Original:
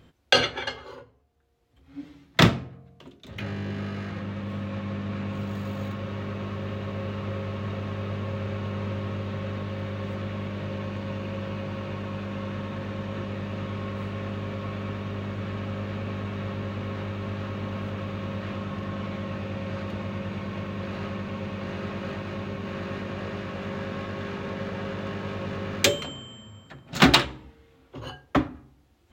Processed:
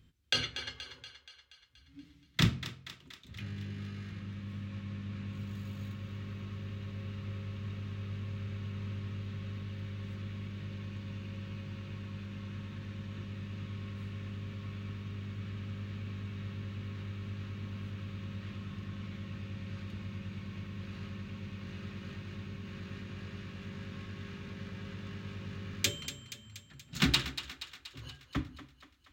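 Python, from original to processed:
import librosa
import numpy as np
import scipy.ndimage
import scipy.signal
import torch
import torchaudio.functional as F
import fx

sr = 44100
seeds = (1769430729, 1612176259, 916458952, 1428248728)

p1 = fx.tone_stack(x, sr, knobs='6-0-2')
p2 = p1 + fx.echo_thinned(p1, sr, ms=238, feedback_pct=61, hz=480.0, wet_db=-11.5, dry=0)
y = p2 * librosa.db_to_amplitude(7.5)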